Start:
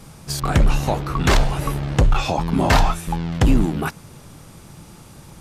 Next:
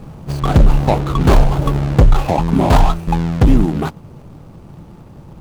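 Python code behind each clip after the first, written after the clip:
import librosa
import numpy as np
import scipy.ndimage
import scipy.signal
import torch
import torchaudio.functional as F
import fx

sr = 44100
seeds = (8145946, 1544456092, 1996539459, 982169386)

y = scipy.signal.medfilt(x, 25)
y = fx.rider(y, sr, range_db=3, speed_s=0.5)
y = y * 10.0 ** (6.5 / 20.0)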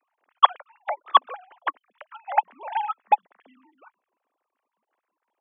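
y = fx.sine_speech(x, sr)
y = scipy.signal.sosfilt(scipy.signal.butter(2, 920.0, 'highpass', fs=sr, output='sos'), y)
y = fx.upward_expand(y, sr, threshold_db=-25.0, expansion=2.5)
y = y * 10.0 ** (-3.5 / 20.0)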